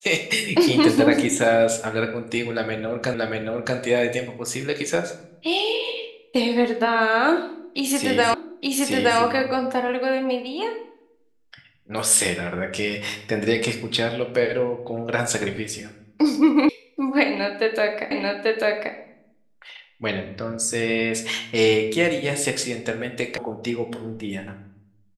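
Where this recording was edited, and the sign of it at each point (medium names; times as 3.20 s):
3.14 s: repeat of the last 0.63 s
8.34 s: repeat of the last 0.87 s
16.69 s: sound stops dead
18.11 s: repeat of the last 0.84 s
23.38 s: sound stops dead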